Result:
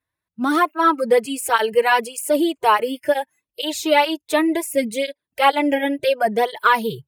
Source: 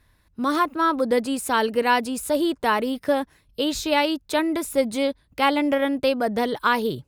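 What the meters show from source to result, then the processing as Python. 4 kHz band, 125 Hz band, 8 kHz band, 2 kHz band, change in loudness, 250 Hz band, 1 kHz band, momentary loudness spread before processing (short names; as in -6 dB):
+2.5 dB, n/a, +4.0 dB, +4.5 dB, +3.5 dB, +1.0 dB, +4.5 dB, 5 LU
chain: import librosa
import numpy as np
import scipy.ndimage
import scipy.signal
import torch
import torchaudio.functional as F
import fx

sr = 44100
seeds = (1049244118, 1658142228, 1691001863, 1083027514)

y = fx.highpass(x, sr, hz=290.0, slope=6)
y = fx.noise_reduce_blind(y, sr, reduce_db=22)
y = fx.peak_eq(y, sr, hz=4700.0, db=-6.0, octaves=0.77)
y = fx.flanger_cancel(y, sr, hz=0.69, depth_ms=5.5)
y = y * librosa.db_to_amplitude(8.0)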